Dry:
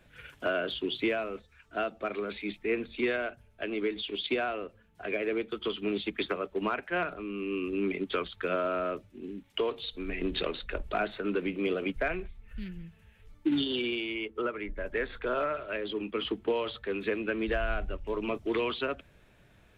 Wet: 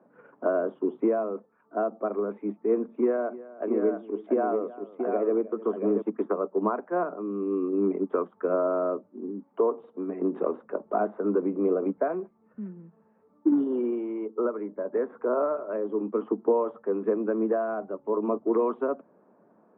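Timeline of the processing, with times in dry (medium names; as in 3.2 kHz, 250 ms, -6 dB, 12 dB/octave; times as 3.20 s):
2.94–6.02 s: multi-tap echo 311/683 ms -18/-6 dB
whole clip: elliptic band-pass 210–1100 Hz, stop band 60 dB; trim +6.5 dB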